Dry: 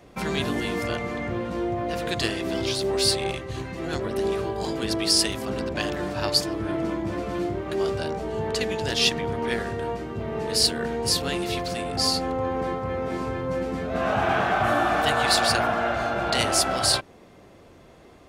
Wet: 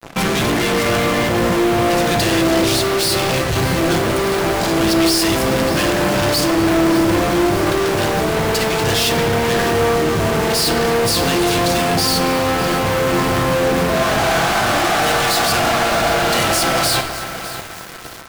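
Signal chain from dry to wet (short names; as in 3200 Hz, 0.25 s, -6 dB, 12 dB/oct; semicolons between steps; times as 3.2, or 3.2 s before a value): fuzz box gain 45 dB, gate -45 dBFS; on a send: narrowing echo 0.253 s, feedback 73%, band-pass 1500 Hz, level -12.5 dB; on the sum: shoebox room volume 860 m³, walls mixed, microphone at 0.72 m; lo-fi delay 0.602 s, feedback 80%, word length 3-bit, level -11 dB; gain -3.5 dB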